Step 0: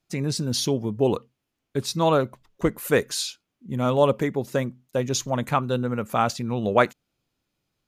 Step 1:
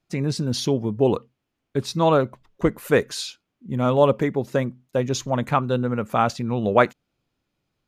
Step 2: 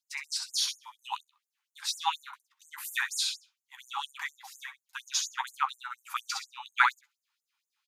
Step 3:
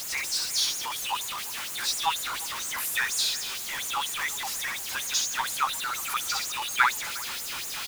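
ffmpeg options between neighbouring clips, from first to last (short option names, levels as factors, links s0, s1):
-af "aemphasis=mode=reproduction:type=cd,volume=1.26"
-filter_complex "[0:a]asplit=2[s0][s1];[s1]adelay=14,volume=0.376[s2];[s0][s2]amix=inputs=2:normalize=0,aecho=1:1:65|130|195:0.501|0.0902|0.0162,afftfilt=real='re*gte(b*sr/1024,750*pow(6600/750,0.5+0.5*sin(2*PI*4.2*pts/sr)))':imag='im*gte(b*sr/1024,750*pow(6600/750,0.5+0.5*sin(2*PI*4.2*pts/sr)))':win_size=1024:overlap=0.75"
-af "aeval=exprs='val(0)+0.5*0.0422*sgn(val(0))':c=same,aecho=1:1:356:0.106"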